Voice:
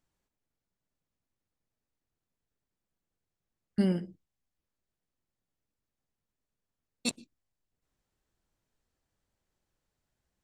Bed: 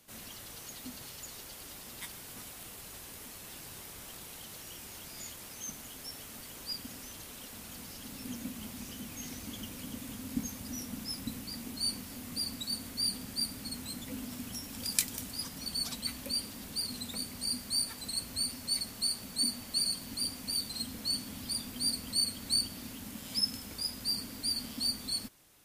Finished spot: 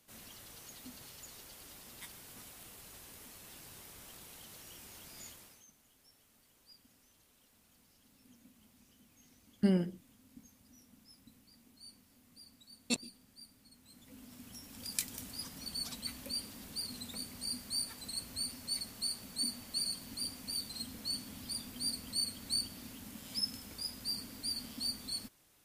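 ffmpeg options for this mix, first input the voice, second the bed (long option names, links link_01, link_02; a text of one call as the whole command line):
ffmpeg -i stem1.wav -i stem2.wav -filter_complex "[0:a]adelay=5850,volume=-1.5dB[link_01];[1:a]volume=10.5dB,afade=type=out:start_time=5.27:duration=0.39:silence=0.16788,afade=type=in:start_time=13.81:duration=1.47:silence=0.149624[link_02];[link_01][link_02]amix=inputs=2:normalize=0" out.wav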